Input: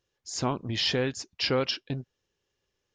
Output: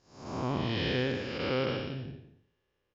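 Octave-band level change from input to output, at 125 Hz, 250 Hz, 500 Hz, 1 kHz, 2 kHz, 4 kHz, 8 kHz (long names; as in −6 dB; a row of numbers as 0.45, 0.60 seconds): −0.5 dB, −0.5 dB, −2.0 dB, −2.5 dB, −1.5 dB, −8.0 dB, below −15 dB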